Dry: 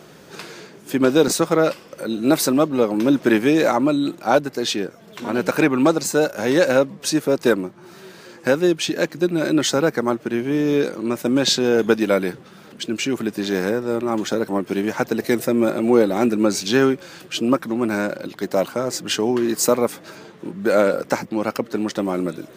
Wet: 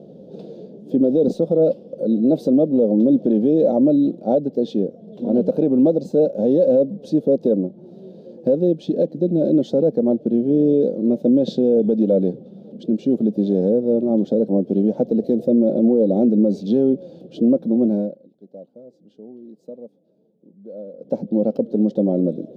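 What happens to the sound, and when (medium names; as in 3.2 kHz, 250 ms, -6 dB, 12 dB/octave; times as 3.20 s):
17.71–21.44 s: dip -24 dB, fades 0.46 s equal-power
whole clip: FFT filter 110 Hz 0 dB, 210 Hz +14 dB, 360 Hz +5 dB, 520 Hz +13 dB, 740 Hz 0 dB, 1.1 kHz -24 dB, 2.1 kHz -30 dB, 3.5 kHz -11 dB, 7.8 kHz -27 dB; peak limiter -3.5 dBFS; trim -4.5 dB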